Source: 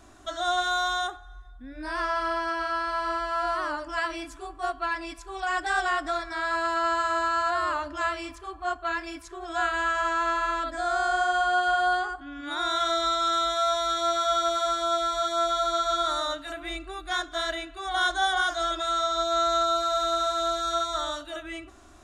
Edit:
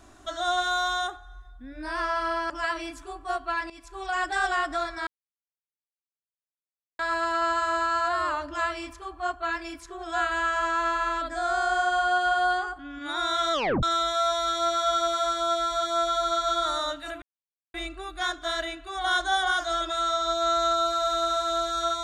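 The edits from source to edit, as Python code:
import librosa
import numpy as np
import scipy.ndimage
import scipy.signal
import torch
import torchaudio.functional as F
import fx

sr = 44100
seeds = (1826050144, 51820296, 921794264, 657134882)

y = fx.edit(x, sr, fx.cut(start_s=2.5, length_s=1.34),
    fx.fade_in_from(start_s=5.04, length_s=0.27, floor_db=-16.0),
    fx.insert_silence(at_s=6.41, length_s=1.92),
    fx.tape_stop(start_s=12.95, length_s=0.3),
    fx.insert_silence(at_s=16.64, length_s=0.52), tone=tone)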